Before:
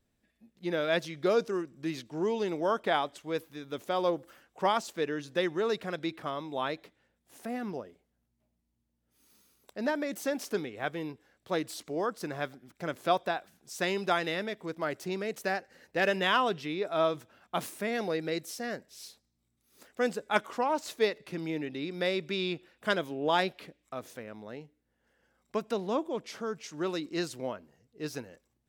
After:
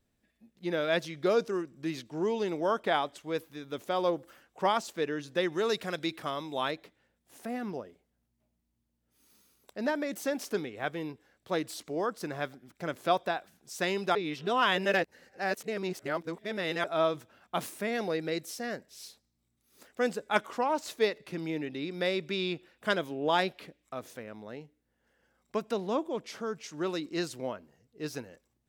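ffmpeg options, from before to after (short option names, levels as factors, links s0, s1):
-filter_complex "[0:a]asettb=1/sr,asplit=3[s0][s1][s2];[s0]atrim=end=5.524[s3];[s1]atrim=start=5.52:end=6.71,asetpts=PTS-STARTPTS,afade=t=in:d=0.004:c=qsin,afade=t=out:st=1.186:d=0.004:c=qsin,highshelf=f=3300:g=9[s4];[s2]atrim=start=6.706[s5];[s3][s4]acrossfade=d=0.004:c1=hsin:c2=qsin[s6];[s6][s5]acrossfade=d=0.004:c1=qsin:c2=hsin,asplit=3[s7][s8][s9];[s7]atrim=end=14.152[s10];[s8]atrim=start=14.148:end=16.842,asetpts=PTS-STARTPTS,areverse[s11];[s9]atrim=start=16.838[s12];[s10][s11]acrossfade=d=0.004:c1=hsin:c2=hsin[s13];[s13][s12]acrossfade=d=0.004:c1=hsin:c2=hsin"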